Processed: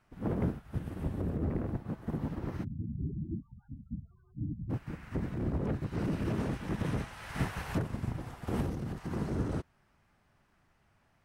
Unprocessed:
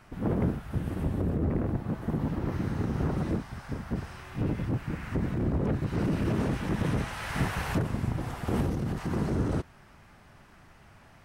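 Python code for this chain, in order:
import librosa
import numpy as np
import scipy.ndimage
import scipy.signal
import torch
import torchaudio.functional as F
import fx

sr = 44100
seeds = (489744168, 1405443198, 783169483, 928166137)

y = fx.spec_topn(x, sr, count=8, at=(2.63, 4.69), fade=0.02)
y = fx.upward_expand(y, sr, threshold_db=-47.0, expansion=1.5)
y = F.gain(torch.from_numpy(y), -3.0).numpy()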